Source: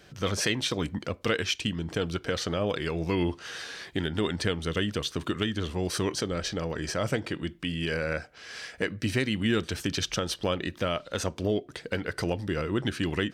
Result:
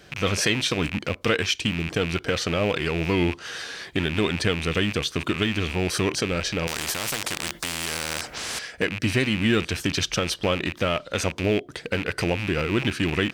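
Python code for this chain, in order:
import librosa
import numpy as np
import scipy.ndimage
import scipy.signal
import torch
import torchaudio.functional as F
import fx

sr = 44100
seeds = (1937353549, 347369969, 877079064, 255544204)

y = fx.rattle_buzz(x, sr, strikes_db=-42.0, level_db=-23.0)
y = fx.spectral_comp(y, sr, ratio=4.0, at=(6.67, 8.59))
y = F.gain(torch.from_numpy(y), 4.5).numpy()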